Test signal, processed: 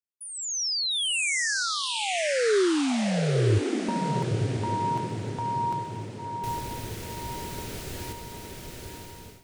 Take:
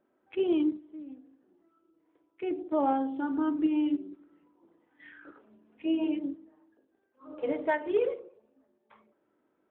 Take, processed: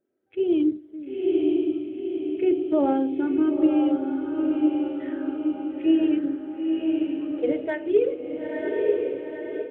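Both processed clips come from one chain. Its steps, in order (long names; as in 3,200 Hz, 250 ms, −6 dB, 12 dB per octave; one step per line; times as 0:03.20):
graphic EQ with 15 bands 100 Hz +8 dB, 400 Hz +7 dB, 1,000 Hz −12 dB
on a send: feedback delay with all-pass diffusion 948 ms, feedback 51%, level −3.5 dB
on the sum: automatic gain control gain up to 14.5 dB
level −8 dB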